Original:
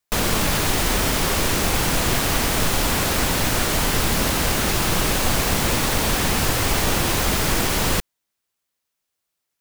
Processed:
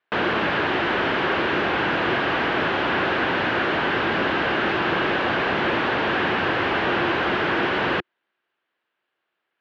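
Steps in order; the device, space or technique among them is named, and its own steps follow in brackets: overdrive pedal into a guitar cabinet (overdrive pedal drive 23 dB, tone 1100 Hz, clips at -5.5 dBFS; speaker cabinet 98–3600 Hz, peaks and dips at 350 Hz +7 dB, 1600 Hz +7 dB, 2900 Hz +4 dB); gain -5 dB

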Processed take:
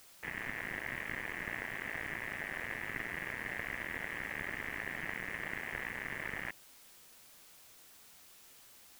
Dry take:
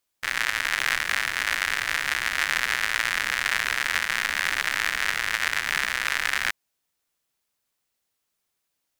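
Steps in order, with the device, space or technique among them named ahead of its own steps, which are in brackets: army field radio (BPF 390–3100 Hz; CVSD 16 kbps; white noise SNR 16 dB)

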